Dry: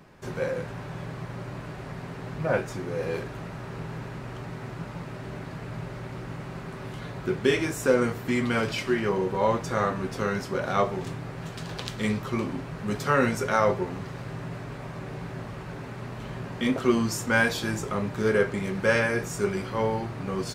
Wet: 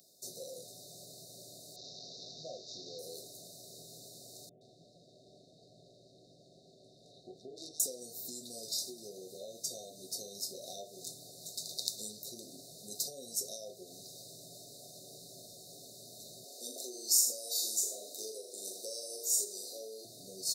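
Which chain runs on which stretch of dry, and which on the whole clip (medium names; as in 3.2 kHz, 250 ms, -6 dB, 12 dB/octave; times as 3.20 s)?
1.76–2.99 s: one-bit delta coder 32 kbps, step -33 dBFS + low-pass 4.4 kHz
4.49–7.80 s: low-pass 2.9 kHz + valve stage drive 20 dB, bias 0.7 + bands offset in time lows, highs 120 ms, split 1.3 kHz
16.44–20.05 s: high-pass 310 Hz 24 dB/octave + flutter echo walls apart 7 m, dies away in 0.51 s
whole clip: compression 5:1, threshold -28 dBFS; differentiator; FFT band-reject 750–3600 Hz; trim +8.5 dB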